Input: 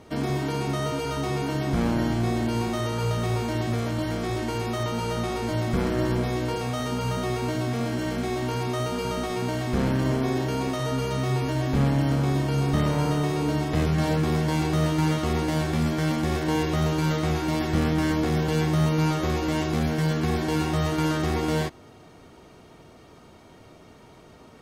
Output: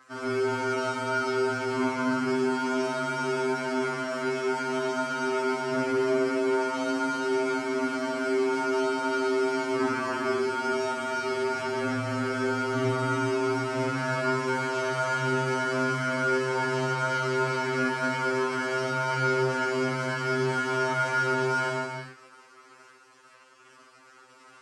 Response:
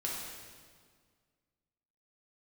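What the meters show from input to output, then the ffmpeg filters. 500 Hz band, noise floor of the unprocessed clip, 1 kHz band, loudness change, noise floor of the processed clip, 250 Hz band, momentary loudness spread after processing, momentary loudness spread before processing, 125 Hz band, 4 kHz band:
+2.0 dB, -50 dBFS, +2.5 dB, -1.5 dB, -55 dBFS, -5.5 dB, 3 LU, 5 LU, -11.5 dB, -3.0 dB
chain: -filter_complex "[0:a]acrusher=bits=6:mix=0:aa=0.000001,highpass=330,equalizer=f=730:t=q:w=4:g=-9,equalizer=f=1.3k:t=q:w=4:g=9,equalizer=f=3.6k:t=q:w=4:g=-10,equalizer=f=6.6k:t=q:w=4:g=-5,lowpass=f=8.1k:w=0.5412,lowpass=f=8.1k:w=1.3066[a];[1:a]atrim=start_sample=2205,afade=t=out:st=0.34:d=0.01,atrim=end_sample=15435,asetrate=27342,aresample=44100[b];[a][b]afir=irnorm=-1:irlink=0,aeval=exprs='val(0)*sin(2*PI*22*n/s)':c=same,afftfilt=real='re*2.45*eq(mod(b,6),0)':imag='im*2.45*eq(mod(b,6),0)':win_size=2048:overlap=0.75"

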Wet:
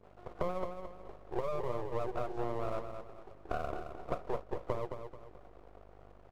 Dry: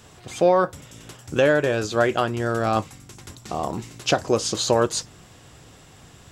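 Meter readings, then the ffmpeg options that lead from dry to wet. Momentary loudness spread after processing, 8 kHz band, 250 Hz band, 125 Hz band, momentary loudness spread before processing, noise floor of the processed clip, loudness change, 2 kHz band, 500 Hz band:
20 LU, under -35 dB, -17.5 dB, -15.0 dB, 21 LU, -56 dBFS, -17.0 dB, -23.5 dB, -16.0 dB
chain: -af "aemphasis=mode=production:type=riaa,acontrast=71,afftfilt=real='re*between(b*sr/4096,320,760)':imag='im*between(b*sr/4096,320,760)':win_size=4096:overlap=0.75,acompressor=threshold=-29dB:ratio=12,aeval=exprs='val(0)+0.00251*(sin(2*PI*50*n/s)+sin(2*PI*2*50*n/s)/2+sin(2*PI*3*50*n/s)/3+sin(2*PI*4*50*n/s)/4+sin(2*PI*5*50*n/s)/5)':c=same,aeval=exprs='sgn(val(0))*max(abs(val(0))-0.00178,0)':c=same,flanger=delay=9.6:depth=5.6:regen=-62:speed=0.62:shape=triangular,aeval=exprs='max(val(0),0)':c=same,aecho=1:1:218|436|654|872:0.422|0.148|0.0517|0.0181,volume=4.5dB"

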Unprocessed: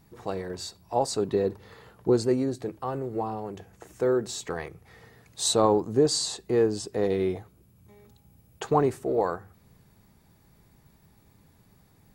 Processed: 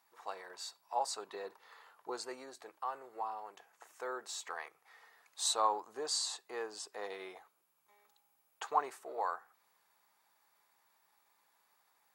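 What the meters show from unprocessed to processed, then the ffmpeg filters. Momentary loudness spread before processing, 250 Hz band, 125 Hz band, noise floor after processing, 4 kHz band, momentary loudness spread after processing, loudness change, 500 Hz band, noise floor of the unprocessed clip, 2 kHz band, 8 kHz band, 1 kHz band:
15 LU, -26.5 dB, under -40 dB, -75 dBFS, -7.0 dB, 17 LU, -12.0 dB, -18.5 dB, -61 dBFS, -5.0 dB, -7.5 dB, -5.0 dB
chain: -af "highpass=f=970:t=q:w=1.6,volume=-7.5dB"

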